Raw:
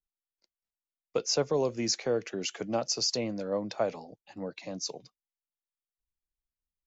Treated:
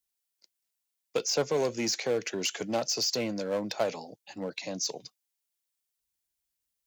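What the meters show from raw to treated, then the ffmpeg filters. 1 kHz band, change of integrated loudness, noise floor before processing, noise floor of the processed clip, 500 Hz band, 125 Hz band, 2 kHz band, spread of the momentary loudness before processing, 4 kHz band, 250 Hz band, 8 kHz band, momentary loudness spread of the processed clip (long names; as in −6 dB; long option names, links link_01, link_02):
+1.0 dB, +1.0 dB, below −85 dBFS, −84 dBFS, +0.5 dB, −1.5 dB, +4.5 dB, 13 LU, +1.0 dB, 0.0 dB, can't be measured, 10 LU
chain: -filter_complex "[0:a]asplit=2[link_01][link_02];[link_02]aeval=exprs='0.0299*(abs(mod(val(0)/0.0299+3,4)-2)-1)':channel_layout=same,volume=-9dB[link_03];[link_01][link_03]amix=inputs=2:normalize=0,highpass=frequency=130:poles=1,highshelf=frequency=3200:gain=11,bandreject=frequency=1200:width=12,acrossover=split=2800[link_04][link_05];[link_05]acompressor=threshold=-28dB:ratio=4:attack=1:release=60[link_06];[link_04][link_06]amix=inputs=2:normalize=0"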